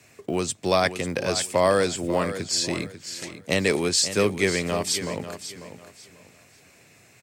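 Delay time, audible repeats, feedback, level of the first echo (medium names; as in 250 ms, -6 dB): 544 ms, 3, 26%, -11.5 dB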